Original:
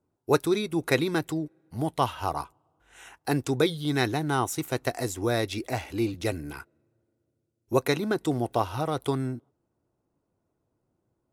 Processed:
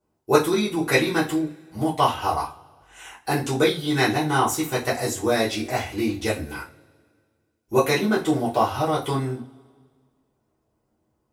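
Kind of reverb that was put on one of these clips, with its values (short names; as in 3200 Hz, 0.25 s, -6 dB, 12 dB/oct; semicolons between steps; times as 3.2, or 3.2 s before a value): two-slope reverb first 0.26 s, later 1.8 s, from -27 dB, DRR -8.5 dB; gain -2.5 dB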